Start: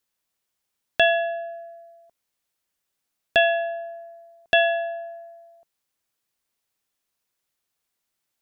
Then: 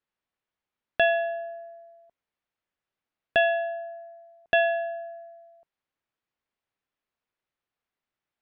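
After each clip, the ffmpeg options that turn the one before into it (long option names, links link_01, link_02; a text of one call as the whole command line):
ffmpeg -i in.wav -af "lowpass=2600,volume=-2.5dB" out.wav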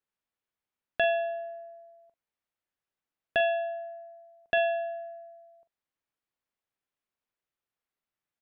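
ffmpeg -i in.wav -filter_complex "[0:a]asplit=2[link_01][link_02];[link_02]adelay=43,volume=-13dB[link_03];[link_01][link_03]amix=inputs=2:normalize=0,volume=-4.5dB" out.wav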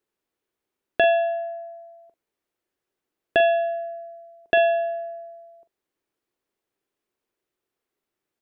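ffmpeg -i in.wav -af "equalizer=frequency=370:width_type=o:width=0.91:gain=12.5,volume=5dB" out.wav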